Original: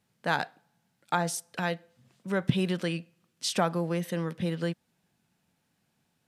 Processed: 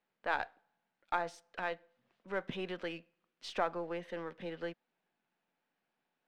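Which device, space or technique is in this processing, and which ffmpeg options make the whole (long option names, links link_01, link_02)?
crystal radio: -af "highpass=370,lowpass=2700,aeval=exprs='if(lt(val(0),0),0.708*val(0),val(0))':channel_layout=same,volume=-4dB"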